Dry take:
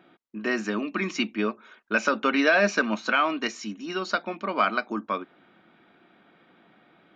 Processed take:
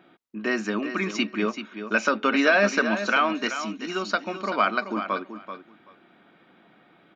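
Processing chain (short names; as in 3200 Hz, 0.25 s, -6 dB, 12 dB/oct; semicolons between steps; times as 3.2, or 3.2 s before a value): feedback echo 0.384 s, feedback 16%, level -10 dB; gain +1 dB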